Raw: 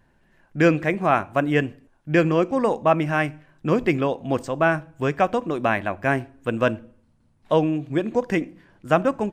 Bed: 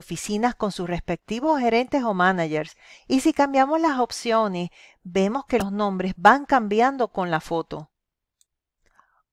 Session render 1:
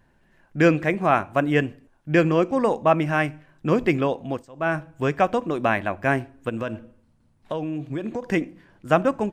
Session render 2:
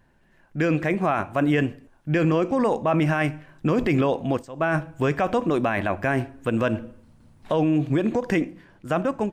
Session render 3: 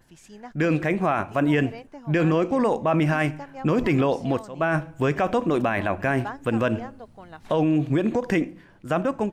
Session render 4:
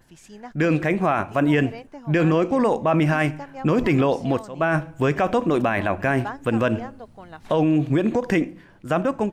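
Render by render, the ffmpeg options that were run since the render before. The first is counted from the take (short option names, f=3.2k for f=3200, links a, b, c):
-filter_complex "[0:a]asplit=3[a][b][c];[a]afade=t=out:st=6.48:d=0.02[d];[b]acompressor=threshold=-24dB:ratio=6:attack=3.2:release=140:knee=1:detection=peak,afade=t=in:st=6.48:d=0.02,afade=t=out:st=8.29:d=0.02[e];[c]afade=t=in:st=8.29:d=0.02[f];[d][e][f]amix=inputs=3:normalize=0,asplit=3[g][h][i];[g]atrim=end=4.46,asetpts=PTS-STARTPTS,afade=t=out:st=4.2:d=0.26:silence=0.125893[j];[h]atrim=start=4.46:end=4.53,asetpts=PTS-STARTPTS,volume=-18dB[k];[i]atrim=start=4.53,asetpts=PTS-STARTPTS,afade=t=in:d=0.26:silence=0.125893[l];[j][k][l]concat=n=3:v=0:a=1"
-af "dynaudnorm=f=130:g=13:m=11.5dB,alimiter=limit=-13dB:level=0:latency=1:release=19"
-filter_complex "[1:a]volume=-20dB[a];[0:a][a]amix=inputs=2:normalize=0"
-af "volume=2dB"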